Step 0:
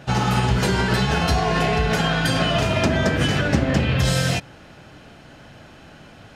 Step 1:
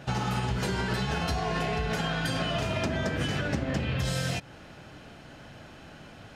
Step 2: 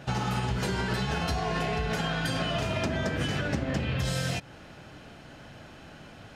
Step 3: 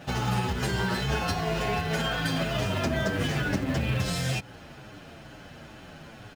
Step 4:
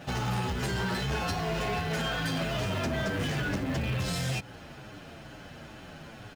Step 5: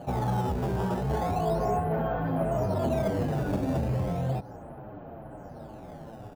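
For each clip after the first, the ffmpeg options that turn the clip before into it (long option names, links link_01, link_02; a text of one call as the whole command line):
ffmpeg -i in.wav -af "acompressor=threshold=-26dB:ratio=2.5,volume=-3dB" out.wav
ffmpeg -i in.wav -af anull out.wav
ffmpeg -i in.wav -filter_complex "[0:a]asplit=2[link_01][link_02];[link_02]acrusher=bits=2:mode=log:mix=0:aa=0.000001,volume=-9dB[link_03];[link_01][link_03]amix=inputs=2:normalize=0,asplit=2[link_04][link_05];[link_05]adelay=8,afreqshift=-2.2[link_06];[link_04][link_06]amix=inputs=2:normalize=1,volume=2dB" out.wav
ffmpeg -i in.wav -af "asoftclip=type=tanh:threshold=-25dB" out.wav
ffmpeg -i in.wav -filter_complex "[0:a]lowpass=frequency=770:width_type=q:width=1.7,asplit=2[link_01][link_02];[link_02]acrusher=samples=12:mix=1:aa=0.000001:lfo=1:lforange=19.2:lforate=0.35,volume=-10dB[link_03];[link_01][link_03]amix=inputs=2:normalize=0" out.wav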